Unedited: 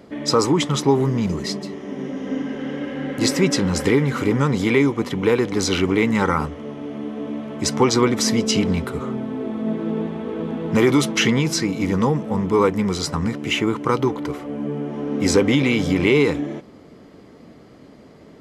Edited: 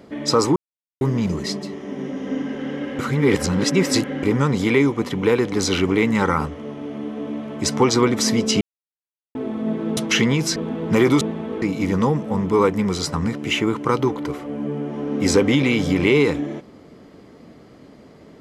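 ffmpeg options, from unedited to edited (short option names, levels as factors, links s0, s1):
-filter_complex "[0:a]asplit=11[s0][s1][s2][s3][s4][s5][s6][s7][s8][s9][s10];[s0]atrim=end=0.56,asetpts=PTS-STARTPTS,afade=t=out:st=0.556:d=0.004:c=hsin[s11];[s1]atrim=start=0.56:end=1.01,asetpts=PTS-STARTPTS,volume=0[s12];[s2]atrim=start=1.01:end=2.992,asetpts=PTS-STARTPTS,afade=t=in:d=0.004:c=hsin[s13];[s3]atrim=start=2.988:end=4.232,asetpts=PTS-STARTPTS,areverse[s14];[s4]atrim=start=4.228:end=8.61,asetpts=PTS-STARTPTS,afade=t=out:st=4.378:d=0.004:c=hsin[s15];[s5]atrim=start=8.61:end=9.35,asetpts=PTS-STARTPTS,volume=0[s16];[s6]atrim=start=9.35:end=9.972,asetpts=PTS-STARTPTS,afade=t=in:d=0.004:c=hsin[s17];[s7]atrim=start=11.028:end=11.622[s18];[s8]atrim=start=10.378:end=11.032[s19];[s9]atrim=start=9.968:end=10.382[s20];[s10]atrim=start=11.618[s21];[s11][s12][s13]concat=n=3:v=0:a=1[s22];[s22][s14]acrossfade=d=0.004:c1=hsin:c2=hsin[s23];[s15][s16][s17]concat=n=3:v=0:a=1[s24];[s23][s24]acrossfade=d=0.004:c1=hsin:c2=hsin[s25];[s25][s18]acrossfade=d=0.004:c1=hsin:c2=hsin[s26];[s26][s19]acrossfade=d=0.004:c1=hsin:c2=hsin[s27];[s27][s20]acrossfade=d=0.004:c1=hsin:c2=hsin[s28];[s28][s21]acrossfade=d=0.004:c1=hsin:c2=hsin"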